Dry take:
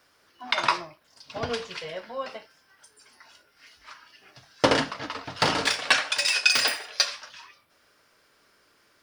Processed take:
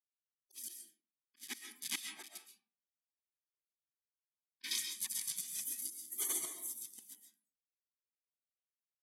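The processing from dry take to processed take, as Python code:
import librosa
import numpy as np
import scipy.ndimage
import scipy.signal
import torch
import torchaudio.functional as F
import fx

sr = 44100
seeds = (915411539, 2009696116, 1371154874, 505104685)

p1 = fx.delta_hold(x, sr, step_db=-27.5)
p2 = fx.rider(p1, sr, range_db=4, speed_s=2.0)
p3 = p1 + F.gain(torch.from_numpy(p2), -1.0).numpy()
p4 = fx.ladder_highpass(p3, sr, hz=490.0, resonance_pct=65)
p5 = fx.spec_gate(p4, sr, threshold_db=-30, keep='weak')
p6 = fx.auto_swell(p5, sr, attack_ms=612.0)
p7 = fx.env_lowpass_down(p6, sr, base_hz=1700.0, full_db=-36.0)
p8 = fx.peak_eq(p7, sr, hz=11000.0, db=7.5, octaves=0.6)
p9 = fx.notch_comb(p8, sr, f0_hz=1400.0)
p10 = fx.rev_freeverb(p9, sr, rt60_s=0.63, hf_ratio=0.6, predelay_ms=90, drr_db=3.0)
p11 = fx.spectral_expand(p10, sr, expansion=1.5)
y = F.gain(torch.from_numpy(p11), 16.5).numpy()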